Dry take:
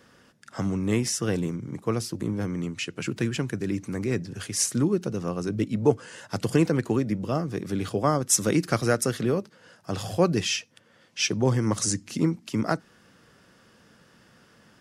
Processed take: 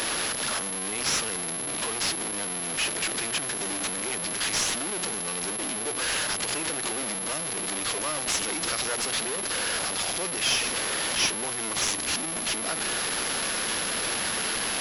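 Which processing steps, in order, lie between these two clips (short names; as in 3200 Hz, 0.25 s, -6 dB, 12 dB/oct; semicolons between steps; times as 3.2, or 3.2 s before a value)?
zero-crossing step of -22 dBFS; differentiator; in parallel at -5.5 dB: Schmitt trigger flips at -27.5 dBFS; on the sum: HPF 290 Hz 12 dB/oct; on a send: reverse echo 0.997 s -21.5 dB; on the sum: maximiser +11.5 dB; pulse-width modulation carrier 11000 Hz; gain -7.5 dB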